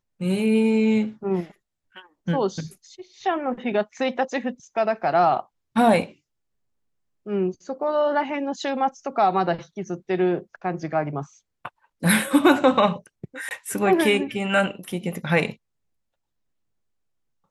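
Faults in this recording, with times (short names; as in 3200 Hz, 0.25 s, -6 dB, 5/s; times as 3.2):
13.49–13.51 gap 19 ms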